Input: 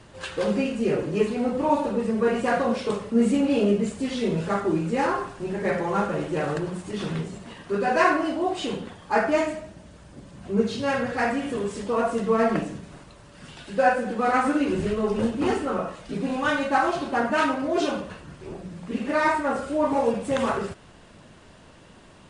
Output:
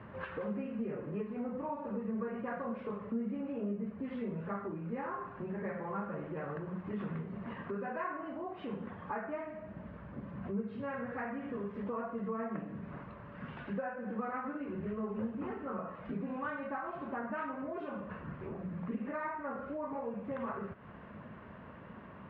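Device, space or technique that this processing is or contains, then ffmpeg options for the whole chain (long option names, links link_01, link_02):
bass amplifier: -filter_complex "[0:a]asettb=1/sr,asplit=3[link_01][link_02][link_03];[link_01]atrim=end=3.524[link_04];[link_02]atrim=start=3.52:end=4.04,asetpts=PTS-STARTPTS,afade=type=in:duration=0.004:curve=qsin,afade=type=out:start_time=0.516:duration=0.004:curve=qsin,highshelf=frequency=4100:gain=-10.5[link_05];[link_03]atrim=start=4.036[link_06];[link_04][link_05]acrossfade=duration=0.004:curve1=hsin:curve2=qsin[link_07];[link_07][link_06]acrossfade=duration=0.004:curve1=qsin:curve2=hsin,acompressor=threshold=-38dB:ratio=5,highpass=69,equalizer=frequency=210:width_type=q:width=4:gain=5,equalizer=frequency=330:width_type=q:width=4:gain=-5,equalizer=frequency=770:width_type=q:width=4:gain=-3,equalizer=frequency=1100:width_type=q:width=4:gain=4,lowpass=frequency=2100:width=0.5412,lowpass=frequency=2100:width=1.3066"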